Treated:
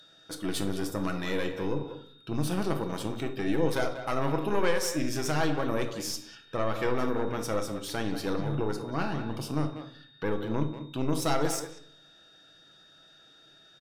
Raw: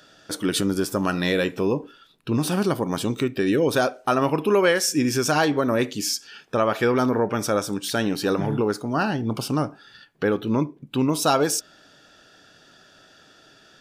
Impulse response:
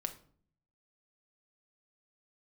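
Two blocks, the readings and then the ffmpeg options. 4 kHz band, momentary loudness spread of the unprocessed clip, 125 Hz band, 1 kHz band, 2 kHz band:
-9.0 dB, 6 LU, -5.5 dB, -8.0 dB, -8.5 dB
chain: -filter_complex "[0:a]aeval=exprs='(tanh(3.98*val(0)+0.75)-tanh(0.75))/3.98':c=same,aeval=exprs='val(0)+0.00562*sin(2*PI*3700*n/s)':c=same,asplit=2[s0][s1];[s1]adelay=190,highpass=300,lowpass=3400,asoftclip=type=hard:threshold=0.119,volume=0.355[s2];[s0][s2]amix=inputs=2:normalize=0[s3];[1:a]atrim=start_sample=2205,asetrate=39249,aresample=44100[s4];[s3][s4]afir=irnorm=-1:irlink=0,volume=0.562"

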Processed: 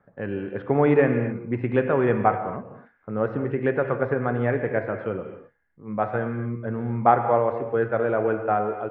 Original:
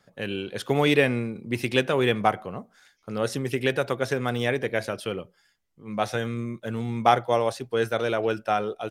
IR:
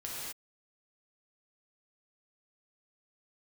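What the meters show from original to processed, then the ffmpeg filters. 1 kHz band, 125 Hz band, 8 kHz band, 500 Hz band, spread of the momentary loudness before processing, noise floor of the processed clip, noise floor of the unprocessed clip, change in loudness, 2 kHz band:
+2.5 dB, +3.0 dB, under -35 dB, +2.5 dB, 11 LU, -64 dBFS, -67 dBFS, +1.5 dB, -2.5 dB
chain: -filter_complex "[0:a]lowpass=f=1800:w=0.5412,lowpass=f=1800:w=1.3066,asplit=2[s0][s1];[1:a]atrim=start_sample=2205,lowpass=f=3100:w=0.5412,lowpass=f=3100:w=1.3066[s2];[s1][s2]afir=irnorm=-1:irlink=0,volume=0.473[s3];[s0][s3]amix=inputs=2:normalize=0"

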